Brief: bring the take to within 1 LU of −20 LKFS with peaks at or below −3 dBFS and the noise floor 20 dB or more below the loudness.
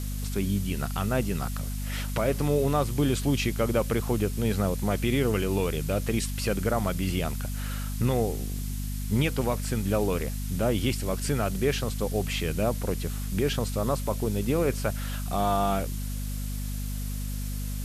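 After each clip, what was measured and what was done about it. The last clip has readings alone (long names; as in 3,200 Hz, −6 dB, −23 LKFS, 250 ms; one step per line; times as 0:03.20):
mains hum 50 Hz; hum harmonics up to 250 Hz; level of the hum −29 dBFS; background noise floor −32 dBFS; target noise floor −49 dBFS; integrated loudness −28.5 LKFS; sample peak −13.0 dBFS; target loudness −20.0 LKFS
→ mains-hum notches 50/100/150/200/250 Hz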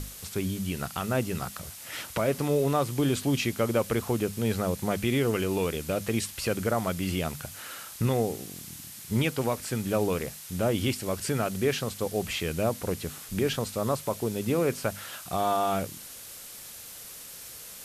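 mains hum none found; background noise floor −44 dBFS; target noise floor −49 dBFS
→ broadband denoise 6 dB, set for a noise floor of −44 dBFS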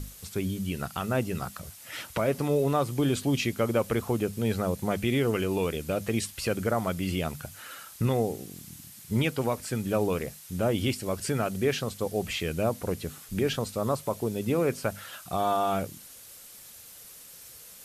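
background noise floor −48 dBFS; target noise floor −49 dBFS
→ broadband denoise 6 dB, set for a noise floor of −48 dBFS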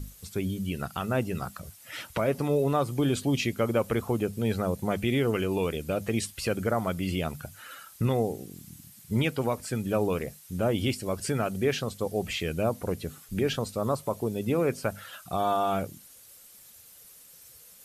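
background noise floor −52 dBFS; integrated loudness −29.0 LKFS; sample peak −14.0 dBFS; target loudness −20.0 LKFS
→ level +9 dB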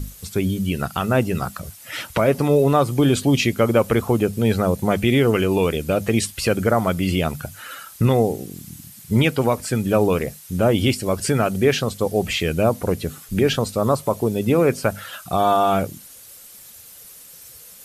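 integrated loudness −20.0 LKFS; sample peak −5.0 dBFS; background noise floor −43 dBFS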